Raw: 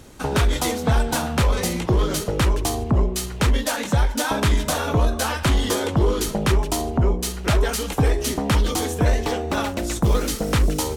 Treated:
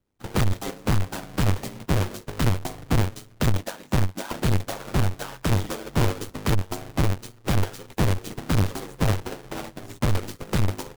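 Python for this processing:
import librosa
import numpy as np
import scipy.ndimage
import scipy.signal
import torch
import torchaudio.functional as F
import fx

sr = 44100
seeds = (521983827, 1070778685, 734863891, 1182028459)

y = fx.halfwave_hold(x, sr)
y = y * np.sin(2.0 * np.pi * 50.0 * np.arange(len(y)) / sr)
y = fx.upward_expand(y, sr, threshold_db=-36.0, expansion=2.5)
y = y * 10.0 ** (-2.5 / 20.0)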